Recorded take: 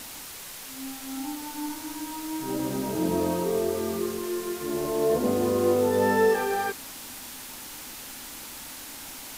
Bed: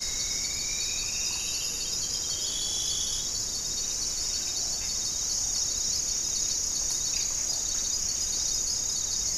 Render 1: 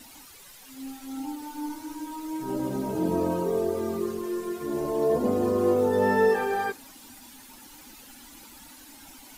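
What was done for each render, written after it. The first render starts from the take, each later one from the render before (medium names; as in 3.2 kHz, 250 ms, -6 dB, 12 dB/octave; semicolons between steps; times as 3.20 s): noise reduction 12 dB, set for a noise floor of -41 dBFS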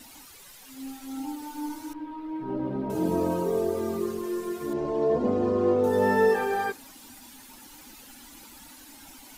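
1.93–2.90 s: distance through air 430 m; 4.73–5.84 s: distance through air 140 m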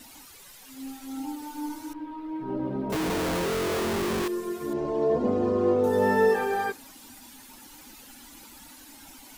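2.92–4.28 s: Schmitt trigger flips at -39.5 dBFS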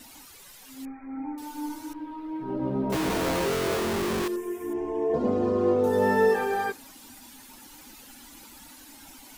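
0.85–1.38 s: brick-wall FIR low-pass 2.5 kHz; 2.60–3.76 s: doubling 15 ms -5.5 dB; 4.36–5.14 s: static phaser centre 860 Hz, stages 8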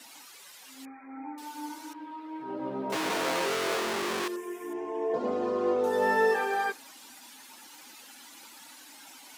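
frequency weighting A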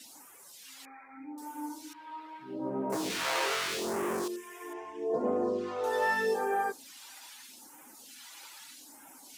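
phase shifter stages 2, 0.8 Hz, lowest notch 180–4000 Hz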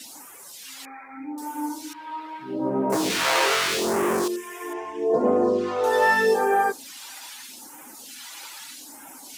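trim +9.5 dB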